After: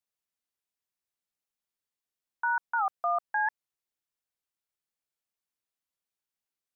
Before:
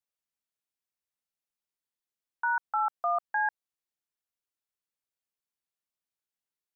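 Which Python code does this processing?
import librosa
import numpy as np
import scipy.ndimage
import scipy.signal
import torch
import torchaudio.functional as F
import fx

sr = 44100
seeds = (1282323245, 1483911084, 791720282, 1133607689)

y = fx.record_warp(x, sr, rpm=78.0, depth_cents=160.0)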